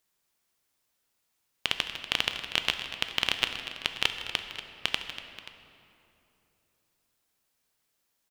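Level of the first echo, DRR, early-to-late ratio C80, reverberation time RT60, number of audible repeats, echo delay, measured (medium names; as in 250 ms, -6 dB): -16.0 dB, 5.5 dB, 7.0 dB, 2.9 s, 3, 158 ms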